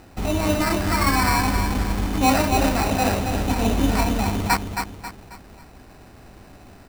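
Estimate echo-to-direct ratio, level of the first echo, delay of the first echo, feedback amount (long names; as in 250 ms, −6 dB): −6.0 dB, −6.5 dB, 270 ms, 38%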